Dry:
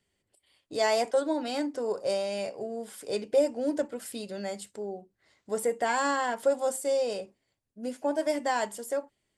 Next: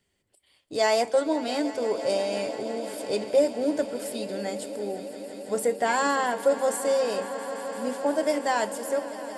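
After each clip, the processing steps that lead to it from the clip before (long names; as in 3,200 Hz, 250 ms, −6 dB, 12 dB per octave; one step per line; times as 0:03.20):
echo that builds up and dies away 169 ms, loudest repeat 5, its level −17.5 dB
level +3 dB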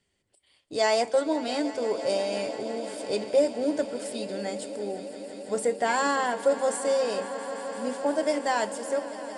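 elliptic low-pass filter 9,800 Hz, stop band 40 dB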